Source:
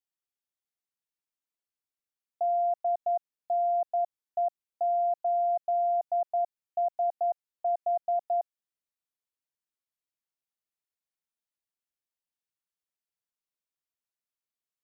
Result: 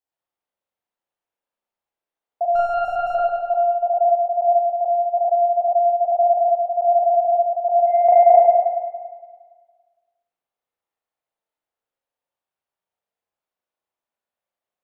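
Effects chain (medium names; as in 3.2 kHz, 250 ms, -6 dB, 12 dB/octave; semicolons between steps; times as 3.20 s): 2.55–3.15 s: comb filter that takes the minimum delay 5.3 ms; peaking EQ 670 Hz +11.5 dB 1.7 oct; 7.86–8.32 s: transient shaper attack +12 dB, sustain -4 dB; spring tank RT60 1.6 s, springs 35/46 ms, chirp 35 ms, DRR -7.5 dB; trim -4.5 dB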